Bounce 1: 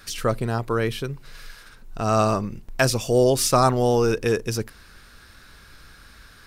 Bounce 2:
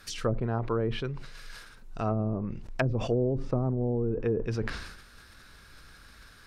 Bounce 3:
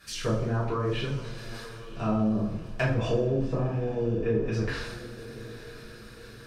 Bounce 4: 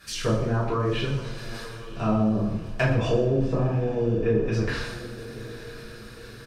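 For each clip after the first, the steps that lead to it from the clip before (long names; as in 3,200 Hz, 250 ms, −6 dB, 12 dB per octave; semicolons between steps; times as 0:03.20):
treble cut that deepens with the level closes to 330 Hz, closed at −16 dBFS; level that may fall only so fast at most 55 dB per second; level −5 dB
feedback delay with all-pass diffusion 969 ms, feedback 42%, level −15 dB; coupled-rooms reverb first 0.51 s, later 2.3 s, from −19 dB, DRR −9 dB; level −7 dB
single-tap delay 118 ms −14.5 dB; level +3.5 dB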